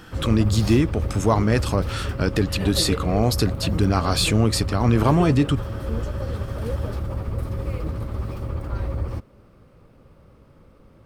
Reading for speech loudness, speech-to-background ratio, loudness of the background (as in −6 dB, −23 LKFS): −21.5 LKFS, 7.0 dB, −28.5 LKFS